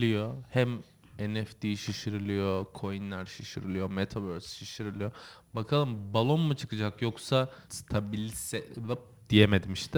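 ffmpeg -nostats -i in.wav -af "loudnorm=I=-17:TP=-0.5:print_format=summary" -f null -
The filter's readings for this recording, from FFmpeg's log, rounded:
Input Integrated:    -31.0 LUFS
Input True Peak:      -7.4 dBTP
Input LRA:             5.0 LU
Input Threshold:     -41.2 LUFS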